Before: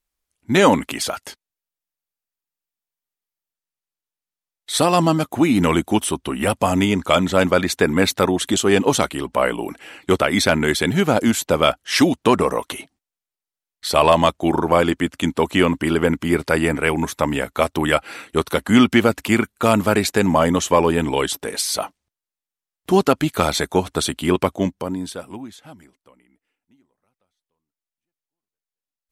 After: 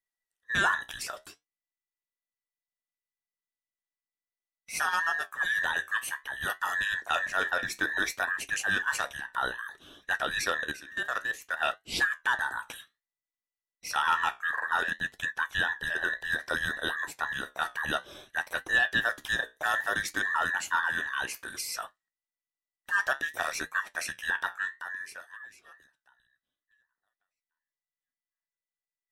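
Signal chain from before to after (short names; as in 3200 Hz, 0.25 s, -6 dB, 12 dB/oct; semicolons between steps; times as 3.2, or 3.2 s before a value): band inversion scrambler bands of 2000 Hz; 10.64–11.57 level quantiser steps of 17 dB; flange 0.59 Hz, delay 9.2 ms, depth 7.7 ms, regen -63%; gain -8.5 dB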